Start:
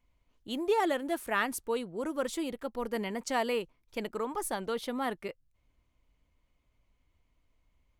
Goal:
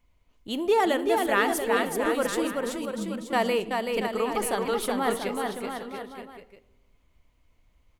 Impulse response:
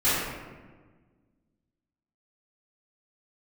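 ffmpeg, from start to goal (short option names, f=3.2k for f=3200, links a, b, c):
-filter_complex "[0:a]asettb=1/sr,asplit=3[a][b][c];[a]atrim=end=2.474[d];[b]atrim=start=2.47:end=3.33,asetpts=PTS-STARTPTS,afade=t=in:d=0.004:c=qsin,afade=t=out:st=0.856:d=0.004:c=qsin,asuperpass=centerf=160:order=4:qfactor=1.4[e];[c]atrim=start=3.326[f];[d][e]acrossfade=d=0.004:c1=hsin:c2=qsin[g];[g][f]acrossfade=d=0.004:c1=qsin:c2=hsin,aecho=1:1:380|684|927.2|1122|1277:0.631|0.398|0.251|0.158|0.1,asplit=2[h][i];[1:a]atrim=start_sample=2205,asetrate=70560,aresample=44100[j];[i][j]afir=irnorm=-1:irlink=0,volume=-26.5dB[k];[h][k]amix=inputs=2:normalize=0,volume=5dB"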